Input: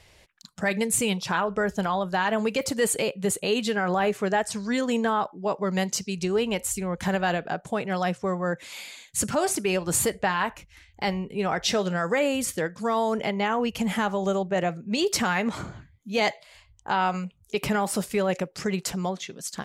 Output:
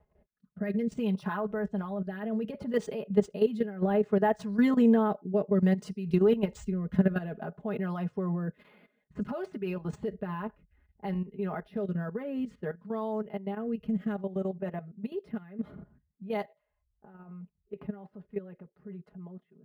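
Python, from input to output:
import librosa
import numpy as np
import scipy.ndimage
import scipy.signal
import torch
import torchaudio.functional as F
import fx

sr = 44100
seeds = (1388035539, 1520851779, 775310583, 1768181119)

y = fx.doppler_pass(x, sr, speed_mps=9, closest_m=12.0, pass_at_s=5.24)
y = fx.high_shelf(y, sr, hz=4000.0, db=-11.0)
y = fx.notch(y, sr, hz=2300.0, q=16.0)
y = fx.level_steps(y, sr, step_db=14)
y = fx.rotary_switch(y, sr, hz=0.6, then_hz=6.7, switch_at_s=17.23)
y = fx.rider(y, sr, range_db=3, speed_s=0.5)
y = fx.tilt_eq(y, sr, slope=-2.5)
y = y + 0.74 * np.pad(y, (int(4.8 * sr / 1000.0), 0))[:len(y)]
y = fx.env_lowpass(y, sr, base_hz=1200.0, full_db=-28.5)
y = fx.highpass(y, sr, hz=130.0, slope=6)
y = np.interp(np.arange(len(y)), np.arange(len(y))[::3], y[::3])
y = y * librosa.db_to_amplitude(4.0)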